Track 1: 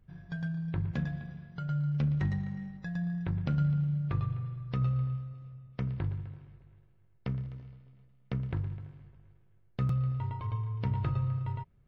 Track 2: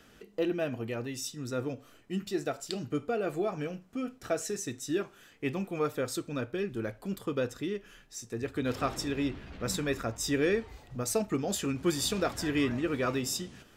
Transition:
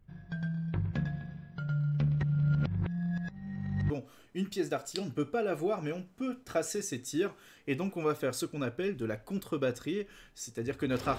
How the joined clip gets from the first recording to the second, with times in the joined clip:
track 1
0:02.23–0:03.90: reverse
0:03.90: continue with track 2 from 0:01.65

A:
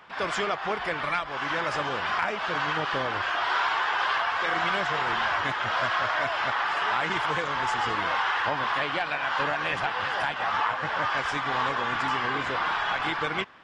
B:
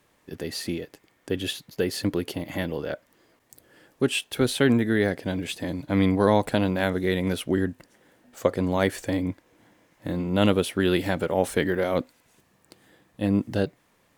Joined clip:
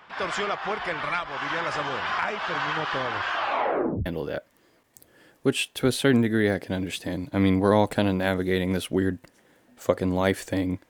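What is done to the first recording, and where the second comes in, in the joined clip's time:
A
0:03.36: tape stop 0.70 s
0:04.06: continue with B from 0:02.62

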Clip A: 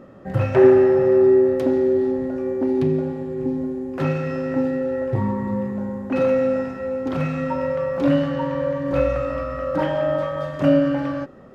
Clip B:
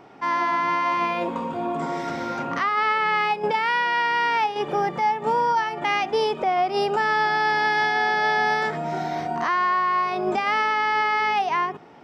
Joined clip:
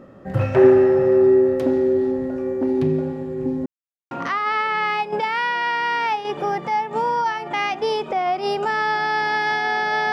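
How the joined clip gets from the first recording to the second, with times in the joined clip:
clip A
0:03.66–0:04.11: silence
0:04.11: continue with clip B from 0:02.42

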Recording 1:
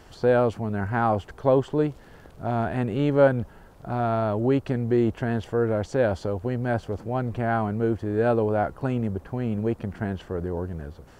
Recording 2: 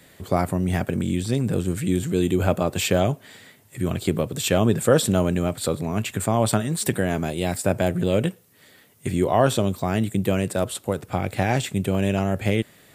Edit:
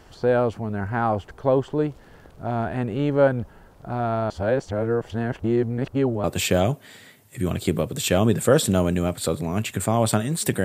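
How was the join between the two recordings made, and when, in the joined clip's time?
recording 1
0:04.30–0:06.24: reverse
0:06.24: continue with recording 2 from 0:02.64

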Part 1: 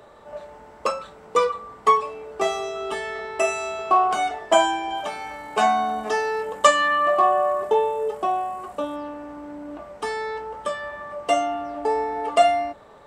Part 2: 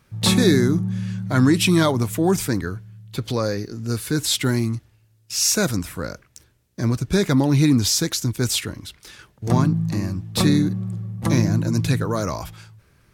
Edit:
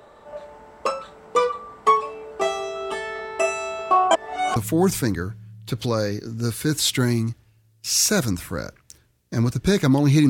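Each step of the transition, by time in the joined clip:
part 1
0:04.11–0:04.56: reverse
0:04.56: continue with part 2 from 0:02.02

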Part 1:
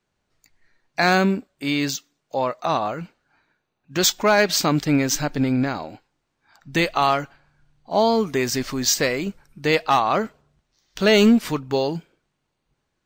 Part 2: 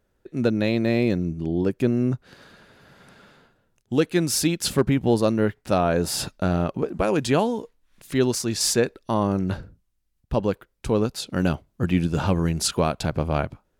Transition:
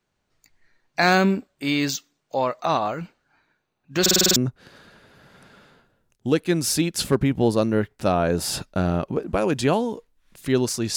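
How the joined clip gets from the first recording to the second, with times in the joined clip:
part 1
0:04.01: stutter in place 0.05 s, 7 plays
0:04.36: continue with part 2 from 0:02.02

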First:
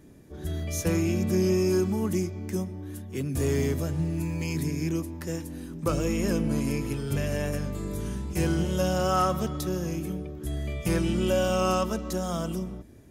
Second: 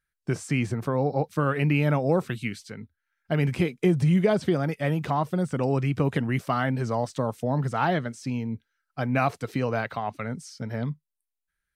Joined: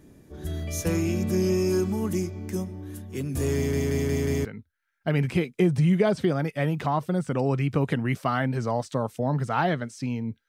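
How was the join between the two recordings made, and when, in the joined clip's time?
first
0:03.55: stutter in place 0.18 s, 5 plays
0:04.45: continue with second from 0:02.69

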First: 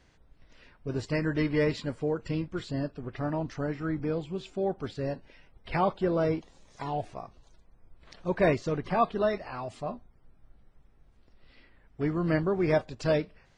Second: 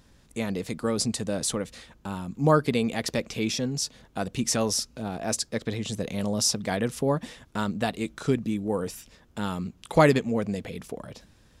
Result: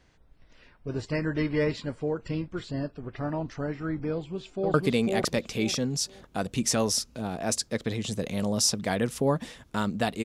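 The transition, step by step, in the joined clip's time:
first
0:04.13–0:04.74: delay throw 500 ms, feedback 25%, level −0.5 dB
0:04.74: continue with second from 0:02.55

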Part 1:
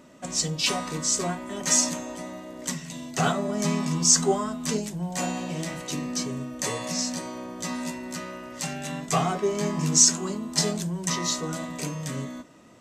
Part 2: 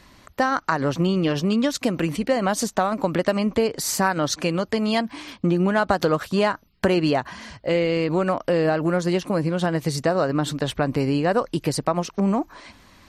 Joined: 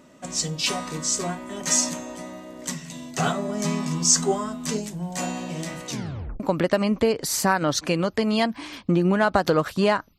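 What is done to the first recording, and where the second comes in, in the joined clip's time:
part 1
0:05.89: tape stop 0.51 s
0:06.40: continue with part 2 from 0:02.95

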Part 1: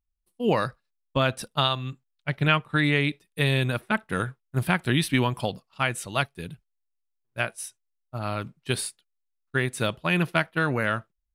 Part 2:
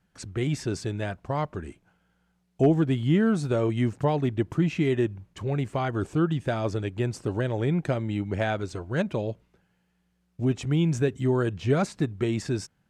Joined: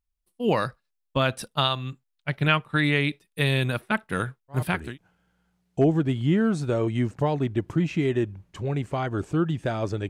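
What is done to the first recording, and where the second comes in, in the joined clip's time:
part 1
0:04.73: continue with part 2 from 0:01.55, crossfade 0.50 s equal-power

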